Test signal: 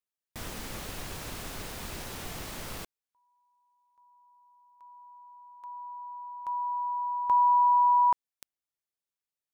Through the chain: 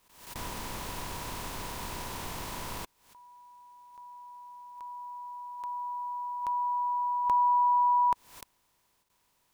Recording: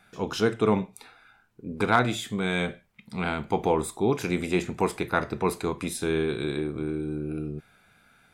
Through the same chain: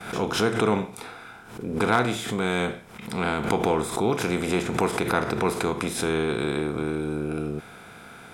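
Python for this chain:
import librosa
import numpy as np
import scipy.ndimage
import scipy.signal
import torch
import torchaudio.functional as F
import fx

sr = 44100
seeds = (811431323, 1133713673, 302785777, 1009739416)

y = fx.bin_compress(x, sr, power=0.6)
y = fx.gate_hold(y, sr, open_db=-59.0, close_db=-62.0, hold_ms=137.0, range_db=-23, attack_ms=10.0, release_ms=57.0)
y = fx.pre_swell(y, sr, db_per_s=86.0)
y = F.gain(torch.from_numpy(y), -2.5).numpy()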